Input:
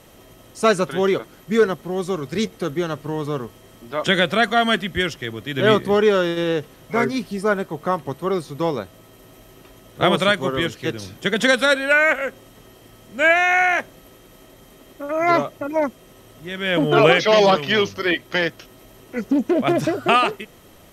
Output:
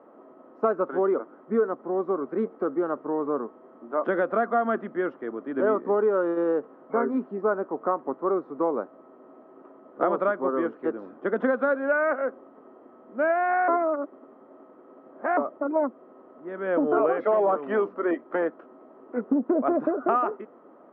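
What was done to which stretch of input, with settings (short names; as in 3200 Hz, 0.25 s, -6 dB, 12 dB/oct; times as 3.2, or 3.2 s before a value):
13.68–15.37 reverse
whole clip: Chebyshev band-pass 250–1300 Hz, order 3; compressor 4:1, threshold -20 dBFS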